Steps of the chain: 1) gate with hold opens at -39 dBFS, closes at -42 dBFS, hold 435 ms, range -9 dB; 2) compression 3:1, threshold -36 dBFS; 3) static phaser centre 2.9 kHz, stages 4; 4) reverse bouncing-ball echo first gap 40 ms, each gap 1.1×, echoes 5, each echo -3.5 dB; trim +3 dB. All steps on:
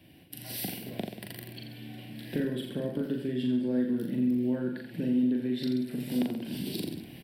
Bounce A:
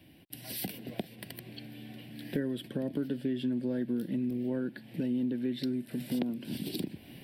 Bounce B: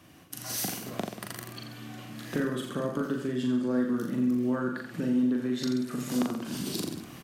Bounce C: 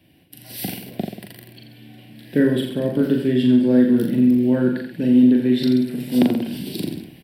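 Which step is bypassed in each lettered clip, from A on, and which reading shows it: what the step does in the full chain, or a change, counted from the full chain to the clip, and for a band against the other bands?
4, momentary loudness spread change -2 LU; 3, momentary loudness spread change -2 LU; 2, mean gain reduction 8.0 dB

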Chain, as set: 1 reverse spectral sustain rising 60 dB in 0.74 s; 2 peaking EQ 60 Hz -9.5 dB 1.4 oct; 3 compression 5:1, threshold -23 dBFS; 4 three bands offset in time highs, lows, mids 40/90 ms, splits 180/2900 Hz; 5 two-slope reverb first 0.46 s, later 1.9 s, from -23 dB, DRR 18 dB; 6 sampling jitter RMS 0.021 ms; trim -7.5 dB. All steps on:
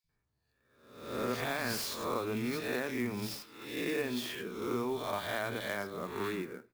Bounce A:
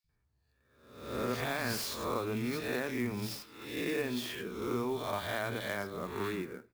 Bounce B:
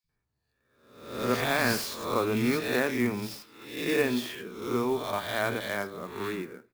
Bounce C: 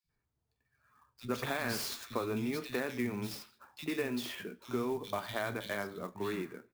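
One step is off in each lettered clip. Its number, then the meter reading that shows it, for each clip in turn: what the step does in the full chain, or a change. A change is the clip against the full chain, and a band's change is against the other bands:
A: 2, 125 Hz band +3.0 dB; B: 3, mean gain reduction 4.0 dB; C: 1, 125 Hz band +1.5 dB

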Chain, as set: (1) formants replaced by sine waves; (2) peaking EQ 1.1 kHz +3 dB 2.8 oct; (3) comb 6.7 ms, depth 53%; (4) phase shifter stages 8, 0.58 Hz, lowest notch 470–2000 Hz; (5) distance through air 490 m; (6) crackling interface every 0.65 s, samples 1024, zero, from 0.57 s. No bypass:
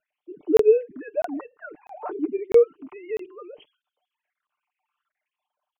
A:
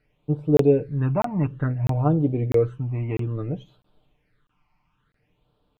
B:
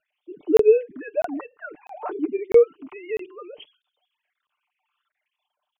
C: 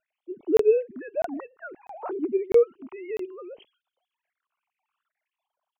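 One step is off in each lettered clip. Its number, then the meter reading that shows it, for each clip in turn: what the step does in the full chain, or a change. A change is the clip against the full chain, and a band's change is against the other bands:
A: 1, 500 Hz band -8.5 dB; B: 5, 2 kHz band +2.5 dB; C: 3, momentary loudness spread change -2 LU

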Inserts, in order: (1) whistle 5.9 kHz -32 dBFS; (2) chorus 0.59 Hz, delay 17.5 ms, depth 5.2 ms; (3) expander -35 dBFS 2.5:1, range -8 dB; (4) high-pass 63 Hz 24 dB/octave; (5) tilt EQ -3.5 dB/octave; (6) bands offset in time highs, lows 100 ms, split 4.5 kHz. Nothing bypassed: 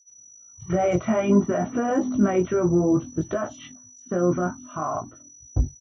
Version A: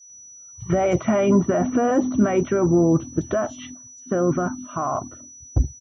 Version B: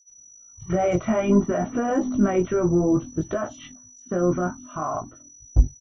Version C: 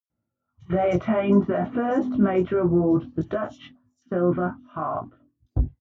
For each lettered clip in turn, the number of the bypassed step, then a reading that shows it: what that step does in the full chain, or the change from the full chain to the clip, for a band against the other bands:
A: 2, crest factor change -2.0 dB; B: 4, crest factor change +3.5 dB; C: 1, momentary loudness spread change -2 LU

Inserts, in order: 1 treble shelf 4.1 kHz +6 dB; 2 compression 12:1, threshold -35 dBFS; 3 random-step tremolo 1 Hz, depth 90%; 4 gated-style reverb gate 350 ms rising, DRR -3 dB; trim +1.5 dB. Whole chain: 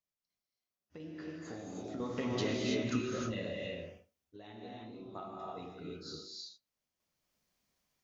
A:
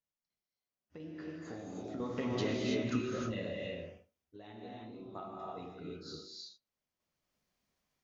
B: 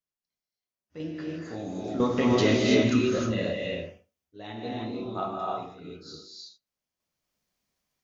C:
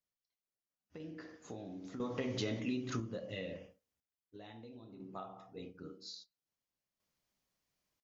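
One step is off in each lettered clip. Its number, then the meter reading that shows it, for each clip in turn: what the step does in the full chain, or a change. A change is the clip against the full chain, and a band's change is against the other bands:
1, 4 kHz band -2.0 dB; 2, mean gain reduction 8.5 dB; 4, 125 Hz band +2.0 dB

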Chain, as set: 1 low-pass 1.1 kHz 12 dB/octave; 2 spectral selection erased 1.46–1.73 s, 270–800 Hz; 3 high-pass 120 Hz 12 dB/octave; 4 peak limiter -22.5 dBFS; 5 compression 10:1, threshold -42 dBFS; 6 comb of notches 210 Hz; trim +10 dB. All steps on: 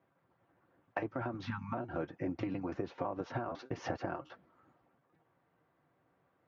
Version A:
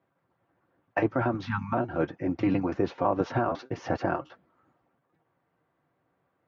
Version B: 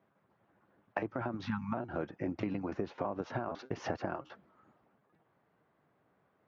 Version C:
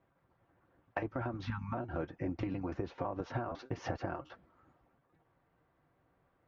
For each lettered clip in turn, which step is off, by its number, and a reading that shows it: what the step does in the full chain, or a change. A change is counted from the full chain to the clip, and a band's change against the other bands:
5, mean gain reduction 9.0 dB; 6, loudness change +1.5 LU; 3, 125 Hz band +3.5 dB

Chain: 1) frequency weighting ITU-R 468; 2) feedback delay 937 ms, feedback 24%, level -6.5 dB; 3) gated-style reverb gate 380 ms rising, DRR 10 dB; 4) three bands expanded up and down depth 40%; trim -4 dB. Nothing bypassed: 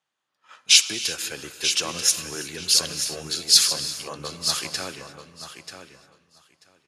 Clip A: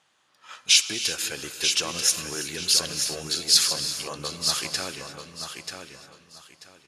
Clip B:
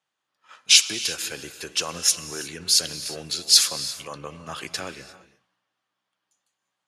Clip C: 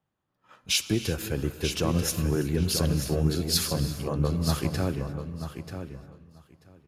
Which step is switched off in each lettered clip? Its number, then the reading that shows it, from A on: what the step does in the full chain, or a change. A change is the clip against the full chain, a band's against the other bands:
4, 8 kHz band -1.5 dB; 2, momentary loudness spread change -3 LU; 1, 125 Hz band +21.5 dB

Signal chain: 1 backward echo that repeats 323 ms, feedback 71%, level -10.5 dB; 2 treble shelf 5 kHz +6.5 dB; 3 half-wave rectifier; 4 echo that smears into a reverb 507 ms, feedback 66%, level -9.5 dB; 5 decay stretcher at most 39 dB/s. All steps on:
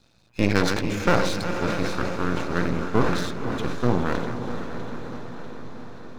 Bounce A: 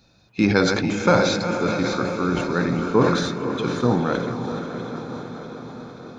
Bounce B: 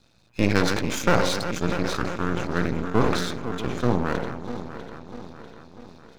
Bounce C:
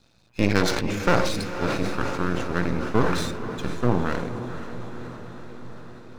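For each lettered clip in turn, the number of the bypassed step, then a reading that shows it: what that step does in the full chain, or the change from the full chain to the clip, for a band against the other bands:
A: 3, distortion -1 dB; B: 4, momentary loudness spread change +1 LU; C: 1, 8 kHz band +1.5 dB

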